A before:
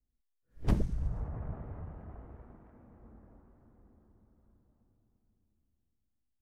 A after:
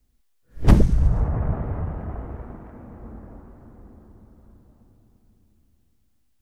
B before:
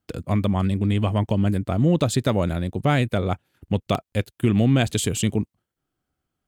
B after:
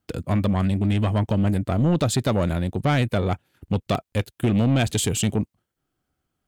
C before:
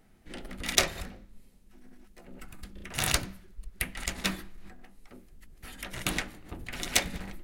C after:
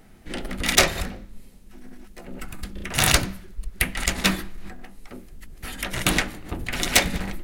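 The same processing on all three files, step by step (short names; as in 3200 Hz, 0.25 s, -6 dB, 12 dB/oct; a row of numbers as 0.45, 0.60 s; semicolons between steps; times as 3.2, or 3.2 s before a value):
soft clip -16.5 dBFS; match loudness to -23 LUFS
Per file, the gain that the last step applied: +16.0, +2.5, +10.5 dB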